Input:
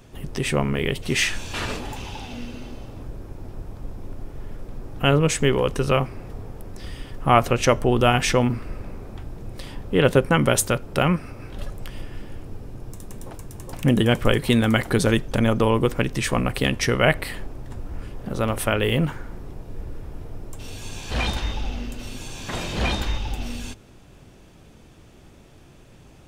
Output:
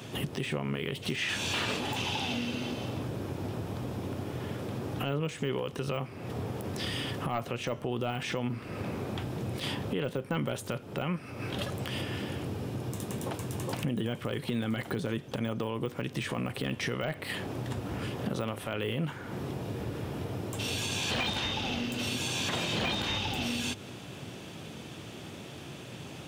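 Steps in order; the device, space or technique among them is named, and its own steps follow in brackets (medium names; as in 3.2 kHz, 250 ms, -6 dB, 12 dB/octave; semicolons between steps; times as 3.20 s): broadcast voice chain (high-pass 100 Hz 24 dB/octave; de-esser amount 80%; compression 4:1, threshold -38 dBFS, peak gain reduction 21 dB; peaking EQ 3.2 kHz +6 dB 0.82 oct; peak limiter -28 dBFS, peak gain reduction 7.5 dB); trim +7 dB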